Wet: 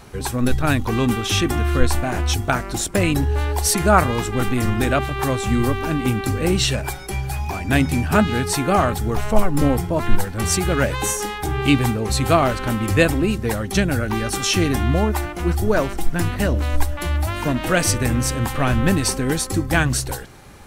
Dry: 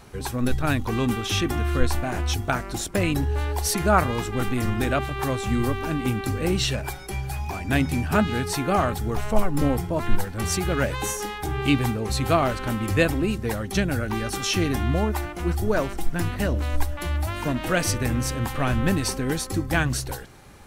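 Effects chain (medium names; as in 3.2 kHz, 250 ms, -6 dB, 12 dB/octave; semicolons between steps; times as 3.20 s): dynamic bell 8.3 kHz, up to +4 dB, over -44 dBFS, Q 2.2; trim +4.5 dB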